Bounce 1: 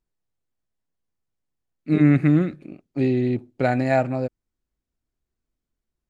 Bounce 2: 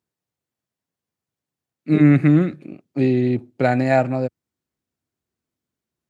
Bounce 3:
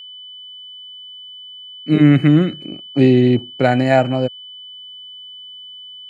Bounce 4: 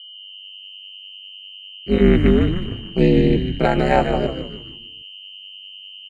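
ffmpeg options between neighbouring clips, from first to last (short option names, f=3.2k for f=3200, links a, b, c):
-af "highpass=f=89:w=0.5412,highpass=f=89:w=1.3066,volume=3dB"
-af "dynaudnorm=f=210:g=3:m=13dB,aeval=exprs='val(0)+0.0224*sin(2*PI*3000*n/s)':c=same,volume=-1dB"
-filter_complex "[0:a]aeval=exprs='val(0)*sin(2*PI*100*n/s)':c=same,asplit=2[a][b];[b]asplit=5[c][d][e][f][g];[c]adelay=150,afreqshift=-95,volume=-7.5dB[h];[d]adelay=300,afreqshift=-190,volume=-14.2dB[i];[e]adelay=450,afreqshift=-285,volume=-21dB[j];[f]adelay=600,afreqshift=-380,volume=-27.7dB[k];[g]adelay=750,afreqshift=-475,volume=-34.5dB[l];[h][i][j][k][l]amix=inputs=5:normalize=0[m];[a][m]amix=inputs=2:normalize=0"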